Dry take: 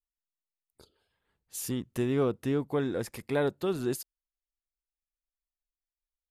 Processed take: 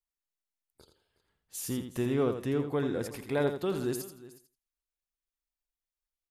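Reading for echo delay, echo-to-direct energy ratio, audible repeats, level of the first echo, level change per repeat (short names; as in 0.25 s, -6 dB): 83 ms, -7.5 dB, 4, -8.0 dB, no steady repeat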